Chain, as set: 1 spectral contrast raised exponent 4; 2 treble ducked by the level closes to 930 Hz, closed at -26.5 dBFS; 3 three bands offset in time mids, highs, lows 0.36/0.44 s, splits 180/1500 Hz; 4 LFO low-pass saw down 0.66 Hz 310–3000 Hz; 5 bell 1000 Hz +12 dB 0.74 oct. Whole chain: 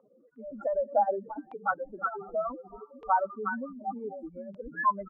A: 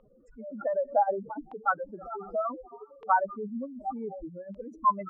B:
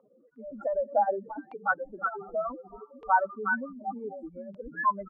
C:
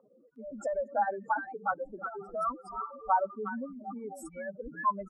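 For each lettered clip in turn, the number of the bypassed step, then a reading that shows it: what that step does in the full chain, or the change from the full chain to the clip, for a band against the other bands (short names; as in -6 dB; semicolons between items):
3, 2 kHz band -2.5 dB; 2, 2 kHz band +5.5 dB; 4, momentary loudness spread change -4 LU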